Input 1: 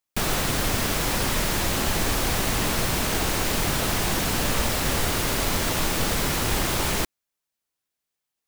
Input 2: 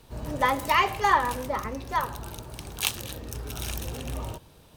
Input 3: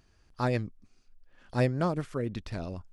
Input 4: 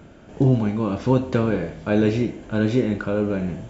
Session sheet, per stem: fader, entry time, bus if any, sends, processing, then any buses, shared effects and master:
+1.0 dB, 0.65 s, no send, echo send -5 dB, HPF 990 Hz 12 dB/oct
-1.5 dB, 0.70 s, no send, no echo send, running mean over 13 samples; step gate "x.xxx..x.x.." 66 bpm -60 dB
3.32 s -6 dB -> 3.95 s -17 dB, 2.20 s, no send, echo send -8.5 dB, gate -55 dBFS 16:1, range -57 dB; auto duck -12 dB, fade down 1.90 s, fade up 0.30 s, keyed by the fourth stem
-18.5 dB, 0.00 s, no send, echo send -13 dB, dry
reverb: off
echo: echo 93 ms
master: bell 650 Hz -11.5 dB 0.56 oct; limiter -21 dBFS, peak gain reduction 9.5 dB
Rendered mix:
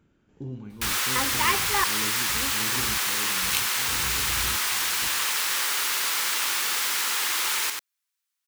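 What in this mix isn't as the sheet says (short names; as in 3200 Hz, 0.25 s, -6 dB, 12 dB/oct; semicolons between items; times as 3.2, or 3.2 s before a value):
stem 2: missing running mean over 13 samples; master: missing limiter -21 dBFS, peak gain reduction 9.5 dB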